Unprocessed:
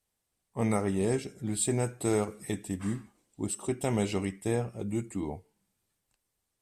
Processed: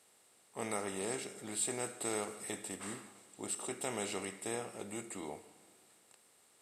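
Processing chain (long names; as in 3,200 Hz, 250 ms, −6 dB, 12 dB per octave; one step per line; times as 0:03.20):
compressor on every frequency bin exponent 0.6
high-pass filter 770 Hz 6 dB per octave
four-comb reverb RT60 2.1 s, combs from 31 ms, DRR 15.5 dB
level −6 dB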